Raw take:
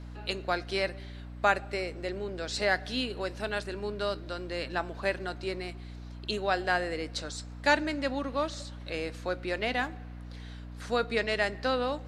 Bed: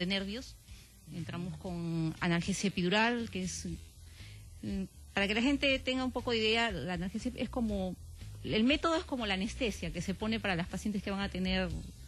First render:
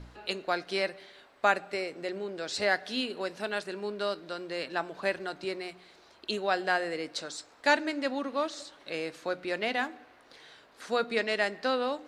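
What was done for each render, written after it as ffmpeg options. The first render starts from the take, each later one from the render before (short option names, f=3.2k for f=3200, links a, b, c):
-af "bandreject=f=60:t=h:w=4,bandreject=f=120:t=h:w=4,bandreject=f=180:t=h:w=4,bandreject=f=240:t=h:w=4,bandreject=f=300:t=h:w=4"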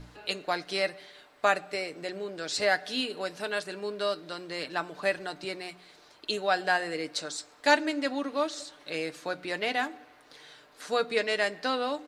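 -af "highshelf=f=5.6k:g=6,aecho=1:1:6.7:0.41"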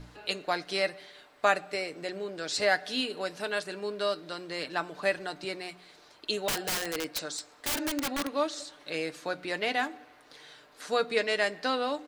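-filter_complex "[0:a]asettb=1/sr,asplit=3[a][b][c];[a]atrim=end=6.484[d];[b]atrim=start=6.48:end=8.33,asetpts=PTS-STARTPTS,afade=t=in:d=0.004:c=qsin,afade=t=out:st=1.846:d=0.004:c=qsin,aeval=exprs='(mod(16.8*val(0)+1,2)-1)/16.8':c=same[e];[c]atrim=start=8.326[f];[d][e]acrossfade=d=0.004:c1=hsin:c2=qsin[g];[g][f]acrossfade=d=0.004:c1=qsin:c2=hsin"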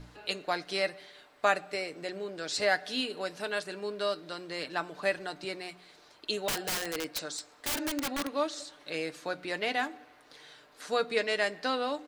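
-af "volume=-1.5dB"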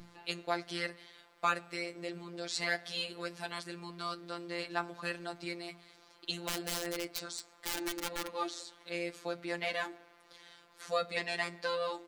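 -af "afftfilt=real='hypot(re,im)*cos(PI*b)':imag='0':win_size=1024:overlap=0.75,asoftclip=type=hard:threshold=-14dB"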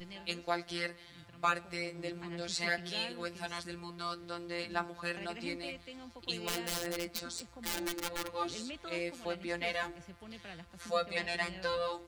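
-filter_complex "[1:a]volume=-16dB[a];[0:a][a]amix=inputs=2:normalize=0"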